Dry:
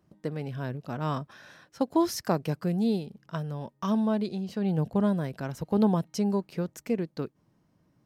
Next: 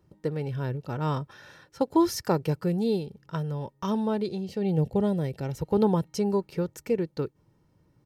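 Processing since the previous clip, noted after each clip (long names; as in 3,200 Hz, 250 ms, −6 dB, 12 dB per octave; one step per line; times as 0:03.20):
gain on a spectral selection 0:04.45–0:05.59, 850–1,800 Hz −7 dB
low-shelf EQ 290 Hz +5.5 dB
comb filter 2.2 ms, depth 49%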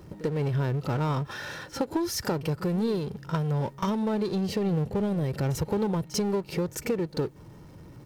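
downward compressor, threshold −32 dBFS, peak gain reduction 15 dB
power curve on the samples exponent 0.7
echo ahead of the sound 43 ms −16 dB
level +4 dB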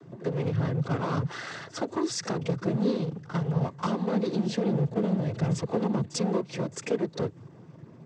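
cochlear-implant simulation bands 16
one half of a high-frequency compander decoder only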